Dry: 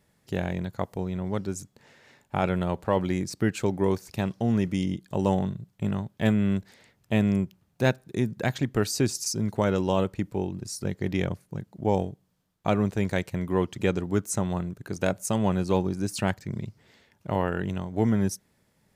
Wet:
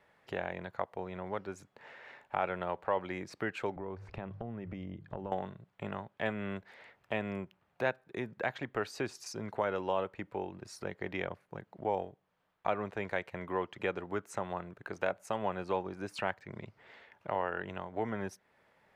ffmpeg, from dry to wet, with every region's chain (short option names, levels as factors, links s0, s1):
-filter_complex "[0:a]asettb=1/sr,asplit=3[s0][s1][s2];[s0]atrim=end=3.764[s3];[s1]atrim=start=3.76:end=5.32,asetpts=PTS-STARTPTS,afade=t=in:d=0.004:c=qsin,afade=t=out:st=1.556:d=0.004:c=qsin,bandreject=f=50:t=h:w=6,bandreject=f=100:t=h:w=6,bandreject=f=150:t=h:w=6,acompressor=threshold=0.0178:ratio=5:attack=3.2:release=140:knee=1:detection=peak,aemphasis=mode=reproduction:type=riaa[s4];[s2]atrim=start=5.316[s5];[s3][s4]acrossfade=d=0.004:c1=hsin:c2=qsin[s6];[s6][s5]acrossfade=d=0.004:c1=qsin:c2=hsin,acrossover=split=470 2900:gain=0.141 1 0.0794[s7][s8][s9];[s7][s8][s9]amix=inputs=3:normalize=0,acompressor=threshold=0.002:ratio=1.5,volume=2.24"